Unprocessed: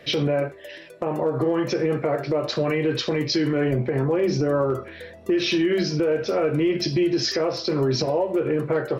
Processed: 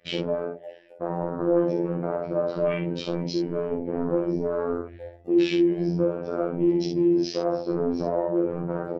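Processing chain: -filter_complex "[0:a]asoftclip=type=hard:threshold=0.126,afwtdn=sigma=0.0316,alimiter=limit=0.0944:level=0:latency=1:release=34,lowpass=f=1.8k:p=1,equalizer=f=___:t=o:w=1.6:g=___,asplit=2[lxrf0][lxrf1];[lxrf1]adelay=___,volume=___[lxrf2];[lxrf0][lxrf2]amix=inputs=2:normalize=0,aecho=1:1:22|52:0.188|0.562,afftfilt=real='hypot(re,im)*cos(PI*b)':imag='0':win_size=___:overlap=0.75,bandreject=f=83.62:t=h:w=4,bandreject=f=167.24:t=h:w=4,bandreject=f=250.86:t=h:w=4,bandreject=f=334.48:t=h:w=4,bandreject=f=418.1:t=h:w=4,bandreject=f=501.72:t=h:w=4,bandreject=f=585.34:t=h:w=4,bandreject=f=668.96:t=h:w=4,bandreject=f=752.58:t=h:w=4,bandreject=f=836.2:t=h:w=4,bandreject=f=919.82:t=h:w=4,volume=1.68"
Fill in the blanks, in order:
250, -3, 12, 0.708, 2048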